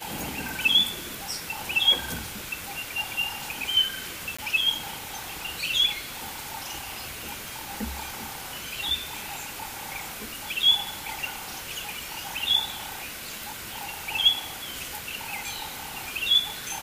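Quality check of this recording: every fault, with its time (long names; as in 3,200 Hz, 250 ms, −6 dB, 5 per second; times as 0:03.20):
0:04.37–0:04.38: drop-out 15 ms
0:07.48: click
0:13.83: click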